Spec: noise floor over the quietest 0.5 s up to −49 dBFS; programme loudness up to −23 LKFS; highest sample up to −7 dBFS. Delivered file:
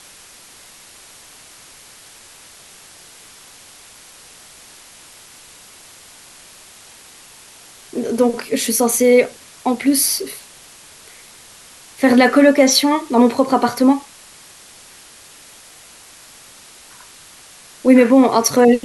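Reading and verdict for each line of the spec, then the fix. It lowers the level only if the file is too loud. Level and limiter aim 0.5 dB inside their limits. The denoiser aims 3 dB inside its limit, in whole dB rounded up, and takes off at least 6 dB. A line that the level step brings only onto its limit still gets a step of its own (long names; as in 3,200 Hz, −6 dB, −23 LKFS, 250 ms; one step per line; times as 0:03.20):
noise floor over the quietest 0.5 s −43 dBFS: out of spec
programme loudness −14.5 LKFS: out of spec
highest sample −1.5 dBFS: out of spec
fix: level −9 dB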